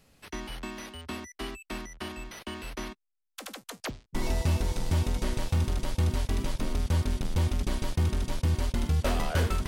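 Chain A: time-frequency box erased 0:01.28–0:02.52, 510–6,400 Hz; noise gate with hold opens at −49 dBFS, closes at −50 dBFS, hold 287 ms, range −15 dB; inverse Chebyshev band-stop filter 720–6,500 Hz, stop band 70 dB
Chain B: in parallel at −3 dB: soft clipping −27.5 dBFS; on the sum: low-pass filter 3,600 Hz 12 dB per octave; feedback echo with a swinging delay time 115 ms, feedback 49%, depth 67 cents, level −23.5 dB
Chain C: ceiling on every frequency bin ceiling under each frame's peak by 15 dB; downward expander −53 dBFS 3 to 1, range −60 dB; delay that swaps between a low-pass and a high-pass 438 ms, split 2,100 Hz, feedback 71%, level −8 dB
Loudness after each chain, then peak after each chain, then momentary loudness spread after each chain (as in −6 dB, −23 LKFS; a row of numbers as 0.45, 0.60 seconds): −31.0, −29.0, −28.5 LKFS; −18.0, −15.5, −12.0 dBFS; 19, 11, 13 LU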